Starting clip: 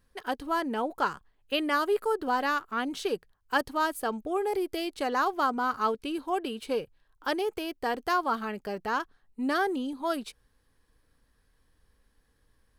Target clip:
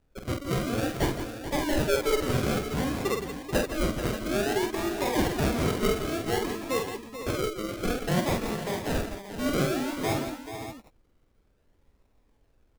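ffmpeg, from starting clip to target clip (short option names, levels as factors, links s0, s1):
-af "acrusher=samples=40:mix=1:aa=0.000001:lfo=1:lforange=24:lforate=0.56,aecho=1:1:47|166|169|435|506|582:0.562|0.15|0.299|0.299|0.266|0.266"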